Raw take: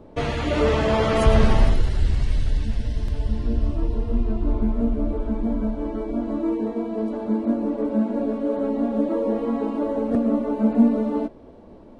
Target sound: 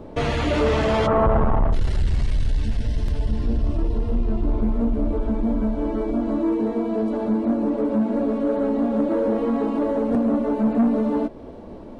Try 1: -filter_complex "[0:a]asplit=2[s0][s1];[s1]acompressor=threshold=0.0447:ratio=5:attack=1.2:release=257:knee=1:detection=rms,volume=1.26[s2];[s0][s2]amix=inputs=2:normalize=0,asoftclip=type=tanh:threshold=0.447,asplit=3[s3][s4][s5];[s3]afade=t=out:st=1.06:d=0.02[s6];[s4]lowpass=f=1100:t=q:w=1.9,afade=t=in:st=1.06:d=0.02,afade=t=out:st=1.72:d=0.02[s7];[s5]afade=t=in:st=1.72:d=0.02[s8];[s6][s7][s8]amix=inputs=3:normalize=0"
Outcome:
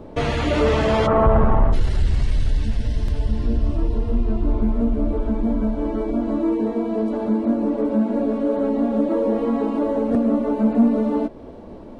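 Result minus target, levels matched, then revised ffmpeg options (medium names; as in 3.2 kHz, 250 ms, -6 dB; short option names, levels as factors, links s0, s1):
saturation: distortion -8 dB
-filter_complex "[0:a]asplit=2[s0][s1];[s1]acompressor=threshold=0.0447:ratio=5:attack=1.2:release=257:knee=1:detection=rms,volume=1.26[s2];[s0][s2]amix=inputs=2:normalize=0,asoftclip=type=tanh:threshold=0.211,asplit=3[s3][s4][s5];[s3]afade=t=out:st=1.06:d=0.02[s6];[s4]lowpass=f=1100:t=q:w=1.9,afade=t=in:st=1.06:d=0.02,afade=t=out:st=1.72:d=0.02[s7];[s5]afade=t=in:st=1.72:d=0.02[s8];[s6][s7][s8]amix=inputs=3:normalize=0"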